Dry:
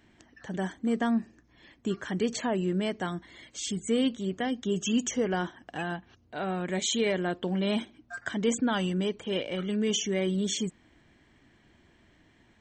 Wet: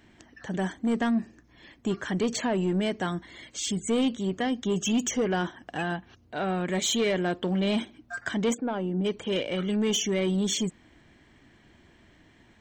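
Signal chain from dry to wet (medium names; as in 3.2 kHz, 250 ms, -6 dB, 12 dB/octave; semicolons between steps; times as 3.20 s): 8.53–9.04 s: band-pass filter 800 Hz -> 220 Hz, Q 1.1; saturation -23 dBFS, distortion -16 dB; trim +4 dB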